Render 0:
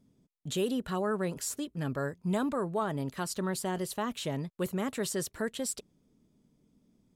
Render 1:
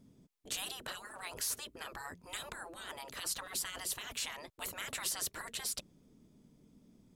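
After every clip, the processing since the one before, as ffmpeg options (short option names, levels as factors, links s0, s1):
-af "afftfilt=real='re*lt(hypot(re,im),0.0282)':imag='im*lt(hypot(re,im),0.0282)':win_size=1024:overlap=0.75,volume=1.68"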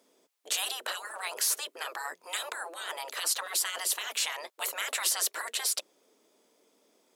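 -af "highpass=f=450:w=0.5412,highpass=f=450:w=1.3066,volume=2.66"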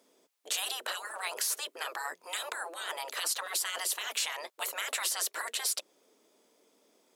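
-af "alimiter=limit=0.1:level=0:latency=1:release=142"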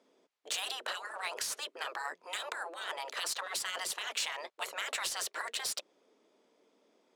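-af "adynamicsmooth=sensitivity=6.5:basefreq=4800,volume=0.891"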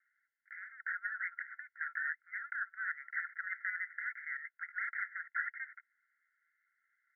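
-af "alimiter=level_in=1.26:limit=0.0631:level=0:latency=1:release=199,volume=0.794,asuperpass=centerf=1700:order=20:qfactor=2.2,volume=2.11"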